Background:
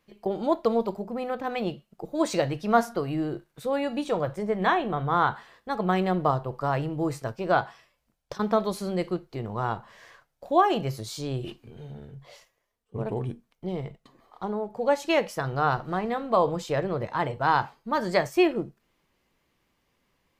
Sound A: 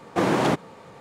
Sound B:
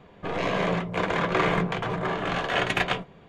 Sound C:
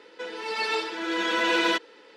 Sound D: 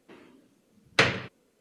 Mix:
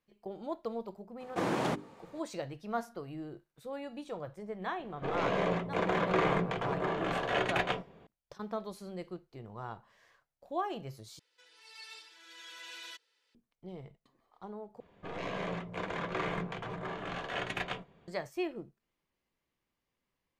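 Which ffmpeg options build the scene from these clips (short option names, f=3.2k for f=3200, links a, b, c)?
-filter_complex "[2:a]asplit=2[a][b];[0:a]volume=-14dB[c];[1:a]bandreject=f=50:t=h:w=6,bandreject=f=100:t=h:w=6,bandreject=f=150:t=h:w=6,bandreject=f=200:t=h:w=6,bandreject=f=250:t=h:w=6,bandreject=f=300:t=h:w=6,bandreject=f=350:t=h:w=6,bandreject=f=400:t=h:w=6[d];[a]equalizer=f=480:w=0.57:g=5[e];[3:a]aderivative[f];[c]asplit=3[g][h][i];[g]atrim=end=11.194[j];[f]atrim=end=2.16,asetpts=PTS-STARTPTS,volume=-12dB[k];[h]atrim=start=13.346:end=14.804[l];[b]atrim=end=3.28,asetpts=PTS-STARTPTS,volume=-11.5dB[m];[i]atrim=start=18.076[n];[d]atrim=end=1,asetpts=PTS-STARTPTS,volume=-10dB,afade=t=in:d=0.004:c=hsin,afade=t=out:st=0.996:d=0.004:c=hsin,adelay=1200[o];[e]atrim=end=3.28,asetpts=PTS-STARTPTS,volume=-8.5dB,afade=t=in:d=0.004:c=hsin,afade=t=out:st=3.276:d=0.004:c=hsin,adelay=4790[p];[j][k]acrossfade=d=0.004:c1=hsin:c2=hsin[q];[q][l]acrossfade=d=0.004:c1=hsin:c2=hsin[r];[r][m]acrossfade=d=0.004:c1=hsin:c2=hsin[s];[s][n]acrossfade=d=0.004:c1=hsin:c2=hsin[t];[t][o][p]amix=inputs=3:normalize=0"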